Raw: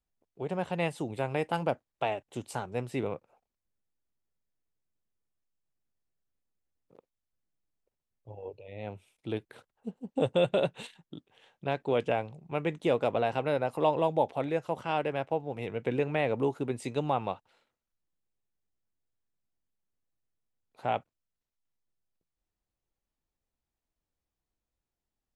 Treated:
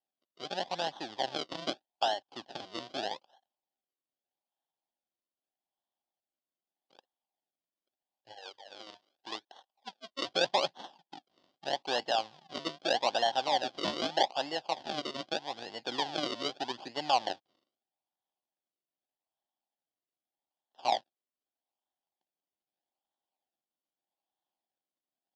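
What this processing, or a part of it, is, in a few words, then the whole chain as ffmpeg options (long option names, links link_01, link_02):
circuit-bent sampling toy: -filter_complex "[0:a]acrusher=samples=36:mix=1:aa=0.000001:lfo=1:lforange=36:lforate=0.81,highpass=410,equalizer=frequency=450:width_type=q:width=4:gain=-10,equalizer=frequency=790:width_type=q:width=4:gain=9,equalizer=frequency=1300:width_type=q:width=4:gain=-9,equalizer=frequency=2200:width_type=q:width=4:gain=-7,equalizer=frequency=3300:width_type=q:width=4:gain=9,equalizer=frequency=4800:width_type=q:width=4:gain=7,lowpass=frequency=5500:width=0.5412,lowpass=frequency=5500:width=1.3066,asettb=1/sr,asplit=3[link_01][link_02][link_03];[link_01]atrim=end=8.334[link_04];[link_02]atrim=start=8.33:end=10.28,asetpts=PTS-STARTPTS,afade=type=in:duration=0.004:curve=qsin,afade=type=out:start_time=1.946:duration=0.004:curve=qsin,lowshelf=frequency=280:gain=-11.5[link_05];[link_03]atrim=start=10.276[link_06];[link_04][link_05]acrossfade=duration=0.004:curve1=hsin:curve2=qsin[link_07];[link_07][link_06]acrossfade=duration=0.004:curve1=qsin:curve2=hsin,volume=-1dB"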